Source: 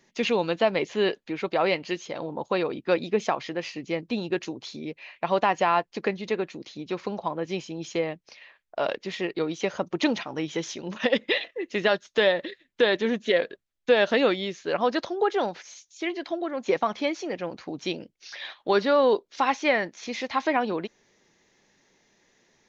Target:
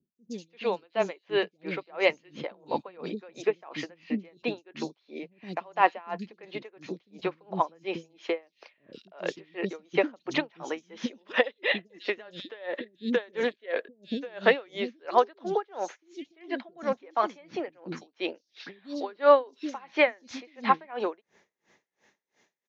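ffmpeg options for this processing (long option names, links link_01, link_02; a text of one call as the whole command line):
ffmpeg -i in.wav -filter_complex "[0:a]highpass=frequency=220:poles=1,acrossover=split=2800[link_01][link_02];[link_01]dynaudnorm=framelen=350:gausssize=7:maxgain=7dB[link_03];[link_03][link_02]amix=inputs=2:normalize=0,acrossover=split=290|4600[link_04][link_05][link_06];[link_06]adelay=150[link_07];[link_05]adelay=340[link_08];[link_04][link_08][link_07]amix=inputs=3:normalize=0,aeval=exprs='val(0)*pow(10,-32*(0.5-0.5*cos(2*PI*2.9*n/s))/20)':channel_layout=same" out.wav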